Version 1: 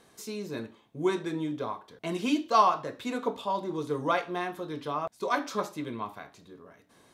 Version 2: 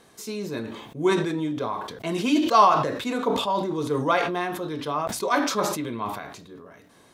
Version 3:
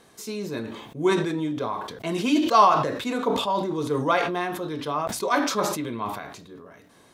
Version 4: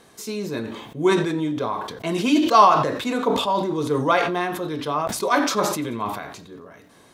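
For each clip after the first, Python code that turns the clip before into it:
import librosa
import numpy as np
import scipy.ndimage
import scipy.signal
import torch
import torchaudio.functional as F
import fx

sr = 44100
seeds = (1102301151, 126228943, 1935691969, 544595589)

y1 = fx.sustainer(x, sr, db_per_s=50.0)
y1 = F.gain(torch.from_numpy(y1), 4.5).numpy()
y2 = y1
y3 = fx.echo_feedback(y2, sr, ms=90, feedback_pct=52, wet_db=-24)
y3 = F.gain(torch.from_numpy(y3), 3.0).numpy()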